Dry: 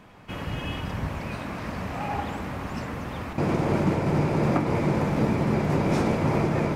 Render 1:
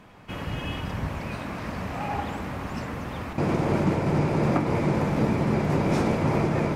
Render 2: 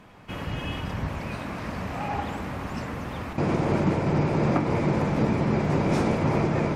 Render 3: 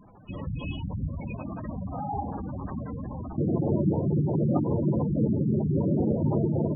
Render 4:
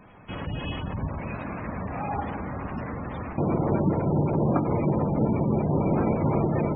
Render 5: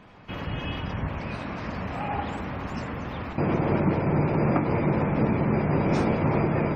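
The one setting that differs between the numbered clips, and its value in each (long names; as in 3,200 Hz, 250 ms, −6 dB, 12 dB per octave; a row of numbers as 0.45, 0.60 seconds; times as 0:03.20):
gate on every frequency bin, under each frame's peak: −60, −50, −10, −20, −35 decibels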